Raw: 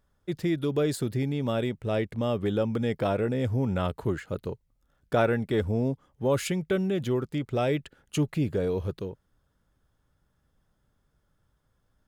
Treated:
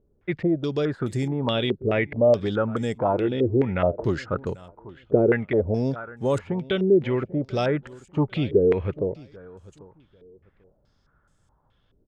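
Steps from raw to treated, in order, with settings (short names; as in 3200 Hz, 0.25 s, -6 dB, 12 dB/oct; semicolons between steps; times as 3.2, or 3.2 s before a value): 3.13–3.63 bell 340 Hz +13 dB 0.29 oct; vocal rider within 3 dB 0.5 s; feedback echo 0.792 s, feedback 23%, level -19.5 dB; stepped low-pass 4.7 Hz 400–7700 Hz; gain +1.5 dB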